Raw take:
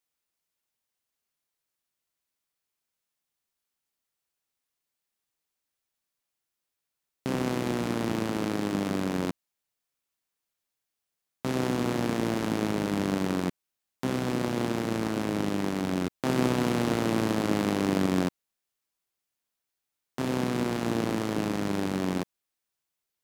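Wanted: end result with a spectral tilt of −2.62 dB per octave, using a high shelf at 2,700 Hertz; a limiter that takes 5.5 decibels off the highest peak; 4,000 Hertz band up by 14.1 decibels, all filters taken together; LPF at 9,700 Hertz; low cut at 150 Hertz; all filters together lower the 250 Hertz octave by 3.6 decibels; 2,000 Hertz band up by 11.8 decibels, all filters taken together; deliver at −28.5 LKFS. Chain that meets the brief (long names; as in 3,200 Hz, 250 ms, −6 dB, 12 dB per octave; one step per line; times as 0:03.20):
high-pass filter 150 Hz
low-pass filter 9,700 Hz
parametric band 250 Hz −4 dB
parametric band 2,000 Hz +9 dB
high-shelf EQ 2,700 Hz +8.5 dB
parametric band 4,000 Hz +8 dB
level −2 dB
brickwall limiter −9.5 dBFS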